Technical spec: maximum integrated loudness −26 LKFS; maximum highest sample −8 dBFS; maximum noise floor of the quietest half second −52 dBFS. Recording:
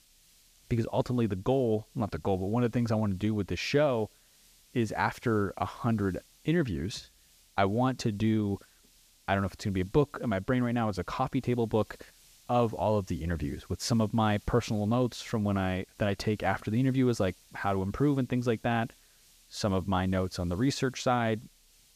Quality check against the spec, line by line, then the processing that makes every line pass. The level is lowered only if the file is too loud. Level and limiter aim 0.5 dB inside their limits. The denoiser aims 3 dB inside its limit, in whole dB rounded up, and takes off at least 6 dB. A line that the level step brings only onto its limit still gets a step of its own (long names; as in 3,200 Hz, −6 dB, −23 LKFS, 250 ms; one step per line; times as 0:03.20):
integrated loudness −30.0 LKFS: in spec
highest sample −12.0 dBFS: in spec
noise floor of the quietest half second −62 dBFS: in spec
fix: no processing needed